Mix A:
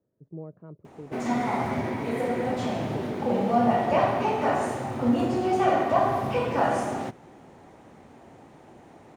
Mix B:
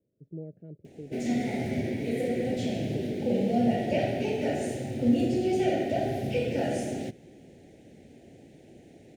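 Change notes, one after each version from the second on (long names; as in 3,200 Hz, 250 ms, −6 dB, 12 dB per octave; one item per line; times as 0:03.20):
master: add Butterworth band-reject 1,100 Hz, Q 0.7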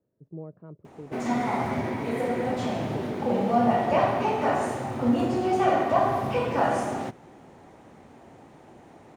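master: remove Butterworth band-reject 1,100 Hz, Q 0.7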